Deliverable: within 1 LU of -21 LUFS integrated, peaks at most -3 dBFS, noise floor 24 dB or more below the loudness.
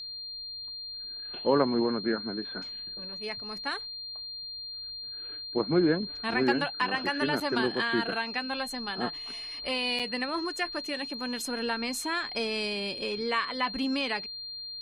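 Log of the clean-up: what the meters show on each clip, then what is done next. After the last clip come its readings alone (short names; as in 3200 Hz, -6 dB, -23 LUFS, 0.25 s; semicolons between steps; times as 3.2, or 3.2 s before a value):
dropouts 2; longest dropout 6.2 ms; steady tone 4200 Hz; tone level -37 dBFS; loudness -30.5 LUFS; peak -11.0 dBFS; loudness target -21.0 LUFS
-> interpolate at 7.4/9.99, 6.2 ms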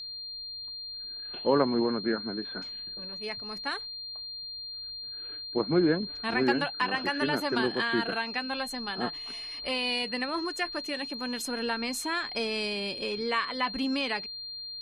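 dropouts 0; steady tone 4200 Hz; tone level -37 dBFS
-> notch 4200 Hz, Q 30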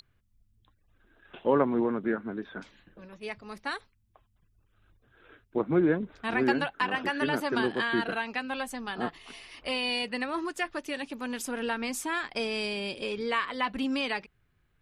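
steady tone none; loudness -30.5 LUFS; peak -10.5 dBFS; loudness target -21.0 LUFS
-> gain +9.5 dB; limiter -3 dBFS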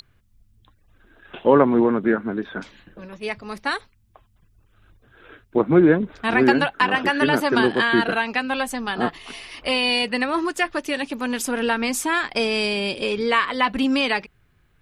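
loudness -21.0 LUFS; peak -3.0 dBFS; noise floor -61 dBFS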